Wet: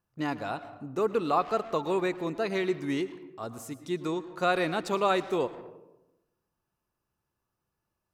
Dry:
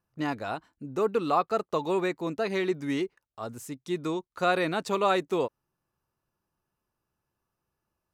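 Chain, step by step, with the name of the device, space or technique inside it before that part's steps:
saturated reverb return (on a send at −11 dB: convolution reverb RT60 0.90 s, pre-delay 100 ms + soft clipping −26.5 dBFS, distortion −9 dB)
on the sum: level −1 dB

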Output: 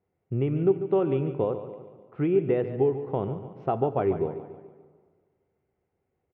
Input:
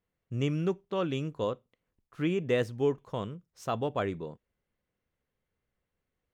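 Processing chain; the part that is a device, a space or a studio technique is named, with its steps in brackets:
bass amplifier (downward compressor, threshold −30 dBFS, peak gain reduction 8 dB; loudspeaker in its box 68–2,200 Hz, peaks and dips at 89 Hz +4 dB, 140 Hz +3 dB, 380 Hz +10 dB, 780 Hz +8 dB, 1,100 Hz −5 dB, 1,700 Hz −8 dB)
repeating echo 144 ms, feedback 48%, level −12 dB
dense smooth reverb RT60 1.8 s, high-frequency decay 0.75×, DRR 14 dB
level +5 dB

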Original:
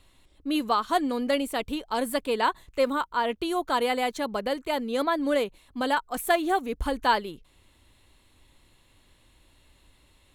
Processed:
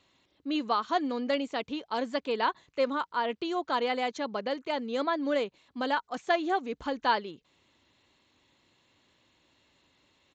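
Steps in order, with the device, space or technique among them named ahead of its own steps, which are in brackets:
Bluetooth headset (high-pass filter 150 Hz 12 dB per octave; downsampling to 16,000 Hz; level −3.5 dB; SBC 64 kbit/s 16,000 Hz)

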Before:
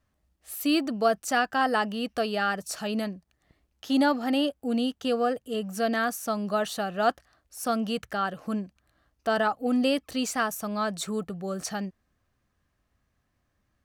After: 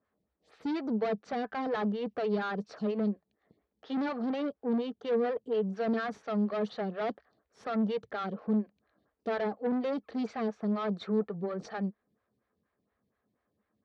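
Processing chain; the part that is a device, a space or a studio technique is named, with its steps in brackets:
vibe pedal into a guitar amplifier (phaser with staggered stages 4.2 Hz; tube saturation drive 31 dB, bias 0.45; loudspeaker in its box 94–4,100 Hz, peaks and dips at 210 Hz +8 dB, 440 Hz +10 dB, 2,800 Hz −7 dB)

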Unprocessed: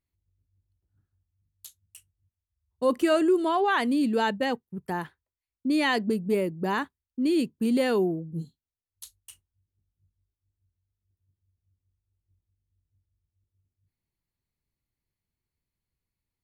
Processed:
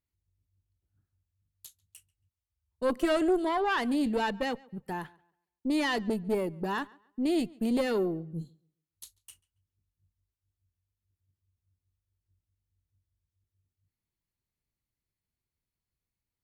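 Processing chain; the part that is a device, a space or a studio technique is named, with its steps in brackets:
rockabilly slapback (tube saturation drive 18 dB, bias 0.65; tape delay 140 ms, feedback 28%, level −23.5 dB, low-pass 4,500 Hz)

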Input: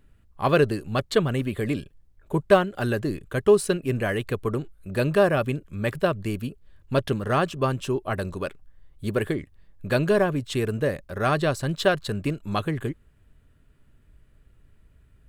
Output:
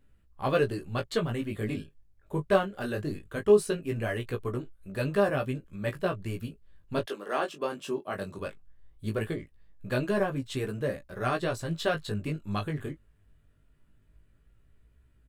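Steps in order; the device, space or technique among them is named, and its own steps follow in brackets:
double-tracked vocal (double-tracking delay 19 ms −12.5 dB; chorus effect 0.19 Hz, delay 15 ms, depth 5.8 ms)
0:07.05–0:08.38: high-pass filter 380 Hz → 110 Hz 24 dB per octave
level −3.5 dB

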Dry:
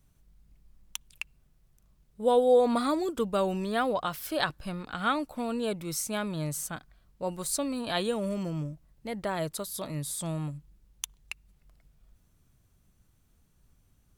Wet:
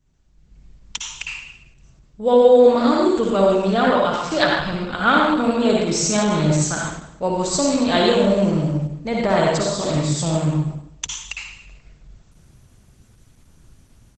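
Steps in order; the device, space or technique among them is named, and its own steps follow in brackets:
speakerphone in a meeting room (convolution reverb RT60 0.85 s, pre-delay 52 ms, DRR −2 dB; far-end echo of a speakerphone 90 ms, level −21 dB; automatic gain control gain up to 13 dB; level −1 dB; Opus 12 kbit/s 48,000 Hz)

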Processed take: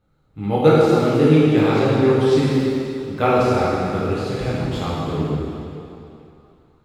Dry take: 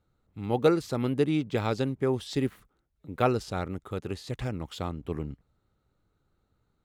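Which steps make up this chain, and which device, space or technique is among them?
swimming-pool hall (convolution reverb RT60 2.8 s, pre-delay 6 ms, DRR −8 dB; high-shelf EQ 5,400 Hz −6.5 dB)
level +3.5 dB

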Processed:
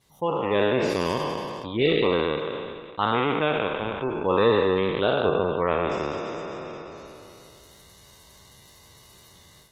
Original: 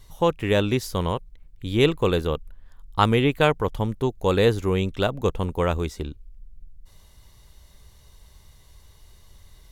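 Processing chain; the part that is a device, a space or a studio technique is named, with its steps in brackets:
peak hold with a decay on every bin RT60 2.87 s
noise-suppressed video call (high-pass filter 150 Hz 12 dB per octave; gate on every frequency bin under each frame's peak −25 dB strong; automatic gain control gain up to 11 dB; level −7.5 dB; Opus 16 kbit/s 48,000 Hz)

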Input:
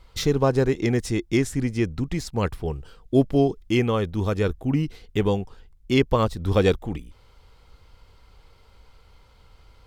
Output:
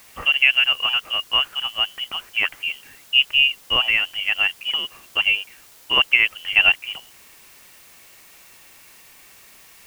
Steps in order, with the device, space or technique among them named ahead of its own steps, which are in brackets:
scrambled radio voice (band-pass filter 380–2,600 Hz; voice inversion scrambler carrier 3,200 Hz; white noise bed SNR 26 dB)
level +6.5 dB

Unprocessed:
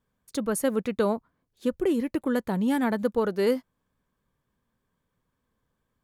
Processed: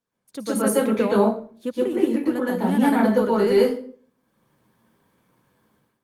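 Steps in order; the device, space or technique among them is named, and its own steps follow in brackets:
far-field microphone of a smart speaker (convolution reverb RT60 0.45 s, pre-delay 113 ms, DRR −7 dB; high-pass filter 150 Hz 12 dB per octave; automatic gain control gain up to 14.5 dB; level −5.5 dB; Opus 32 kbit/s 48,000 Hz)

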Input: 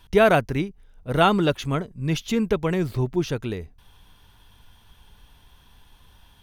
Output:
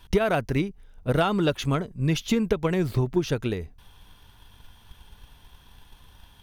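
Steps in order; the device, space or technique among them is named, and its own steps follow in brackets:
drum-bus smash (transient designer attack +7 dB, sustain +2 dB; downward compressor 12 to 1, threshold −17 dBFS, peak gain reduction 12.5 dB; soft clipping −9.5 dBFS, distortion −24 dB)

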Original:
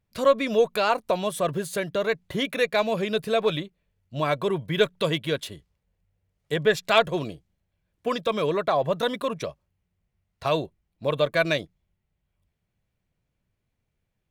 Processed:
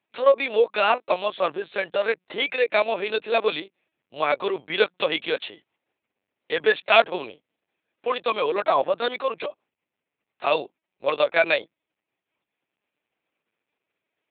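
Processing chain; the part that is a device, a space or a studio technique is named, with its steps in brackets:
talking toy (linear-prediction vocoder at 8 kHz pitch kept; high-pass filter 430 Hz 12 dB per octave; parametric band 2,500 Hz +5 dB 0.26 octaves)
level +3.5 dB

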